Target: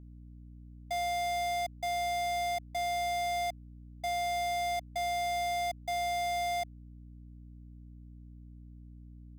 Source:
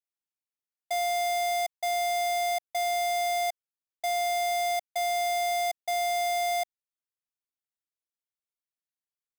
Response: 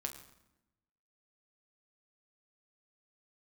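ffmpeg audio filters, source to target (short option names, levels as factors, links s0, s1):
-filter_complex "[0:a]acrossover=split=270|5800[s0][s1][s2];[s2]asoftclip=type=tanh:threshold=0.0119[s3];[s0][s1][s3]amix=inputs=3:normalize=0,aeval=exprs='val(0)+0.00631*(sin(2*PI*60*n/s)+sin(2*PI*2*60*n/s)/2+sin(2*PI*3*60*n/s)/3+sin(2*PI*4*60*n/s)/4+sin(2*PI*5*60*n/s)/5)':c=same,volume=0.596"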